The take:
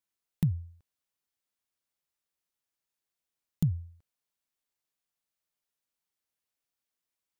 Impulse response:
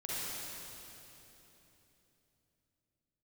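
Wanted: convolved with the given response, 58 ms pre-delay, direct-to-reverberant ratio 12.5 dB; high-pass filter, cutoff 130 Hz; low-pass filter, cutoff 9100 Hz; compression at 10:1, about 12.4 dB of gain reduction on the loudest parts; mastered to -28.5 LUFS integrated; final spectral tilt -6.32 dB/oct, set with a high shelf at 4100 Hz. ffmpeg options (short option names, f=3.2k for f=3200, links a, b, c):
-filter_complex "[0:a]highpass=130,lowpass=9.1k,highshelf=f=4.1k:g=5.5,acompressor=threshold=-36dB:ratio=10,asplit=2[a][b];[1:a]atrim=start_sample=2205,adelay=58[c];[b][c]afir=irnorm=-1:irlink=0,volume=-16.5dB[d];[a][d]amix=inputs=2:normalize=0,volume=20dB"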